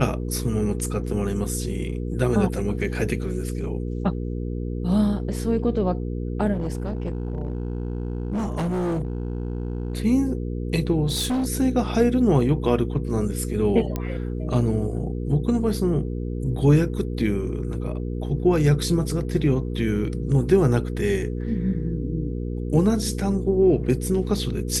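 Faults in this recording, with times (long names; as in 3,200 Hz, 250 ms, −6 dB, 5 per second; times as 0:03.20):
mains hum 60 Hz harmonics 8 −28 dBFS
0:06.53–0:09.97: clipping −22 dBFS
0:11.06–0:11.47: clipping −20.5 dBFS
0:13.96: click −13 dBFS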